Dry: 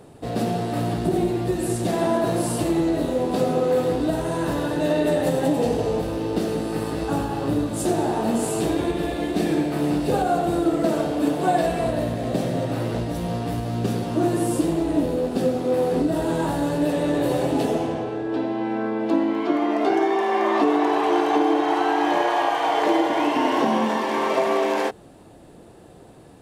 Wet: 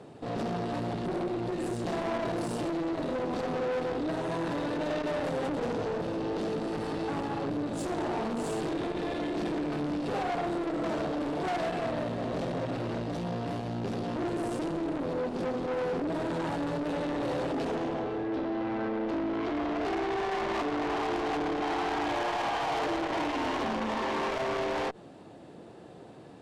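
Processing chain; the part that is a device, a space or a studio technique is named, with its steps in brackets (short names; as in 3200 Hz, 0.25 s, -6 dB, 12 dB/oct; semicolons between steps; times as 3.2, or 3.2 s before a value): valve radio (BPF 120–5500 Hz; tube stage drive 27 dB, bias 0.4; core saturation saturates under 250 Hz)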